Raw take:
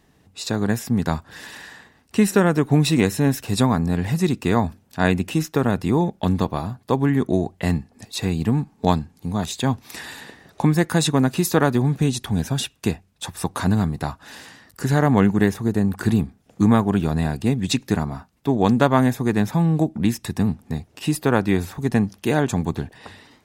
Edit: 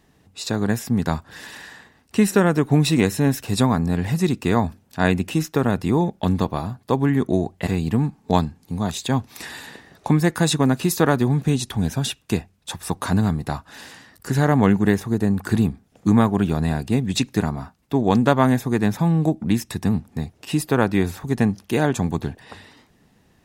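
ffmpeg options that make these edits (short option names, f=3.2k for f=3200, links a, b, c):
-filter_complex "[0:a]asplit=2[a][b];[a]atrim=end=7.672[c];[b]atrim=start=8.208[d];[c][d]acrossfade=d=0.004:c1=hsin:c2=hsin"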